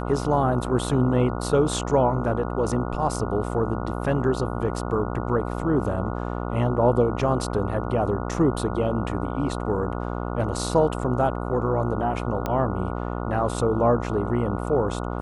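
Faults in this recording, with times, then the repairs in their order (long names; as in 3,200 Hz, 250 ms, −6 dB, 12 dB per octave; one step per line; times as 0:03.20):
mains buzz 60 Hz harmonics 24 −29 dBFS
0:12.46: click −13 dBFS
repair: click removal
hum removal 60 Hz, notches 24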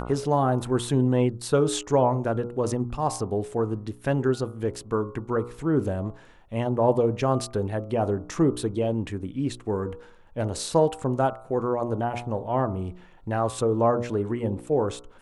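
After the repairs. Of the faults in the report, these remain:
none of them is left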